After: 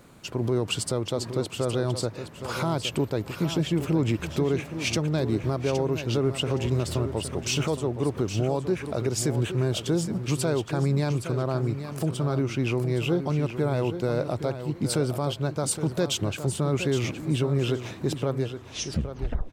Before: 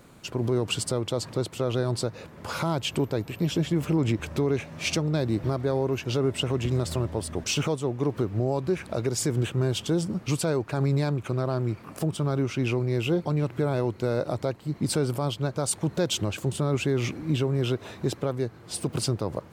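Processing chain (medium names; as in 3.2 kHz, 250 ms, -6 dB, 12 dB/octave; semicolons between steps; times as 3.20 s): tape stop on the ending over 1.07 s; feedback delay 817 ms, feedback 20%, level -10 dB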